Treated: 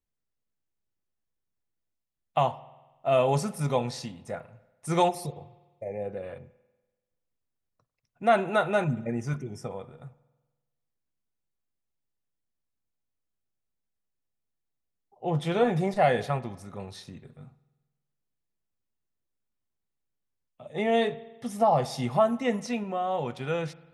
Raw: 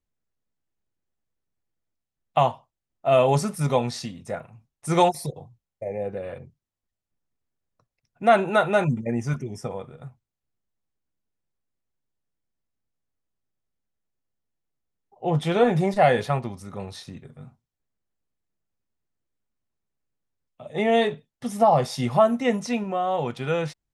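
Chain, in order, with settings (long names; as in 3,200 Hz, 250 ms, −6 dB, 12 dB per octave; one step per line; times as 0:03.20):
spring reverb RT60 1.2 s, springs 48 ms, chirp 60 ms, DRR 18 dB
level −4.5 dB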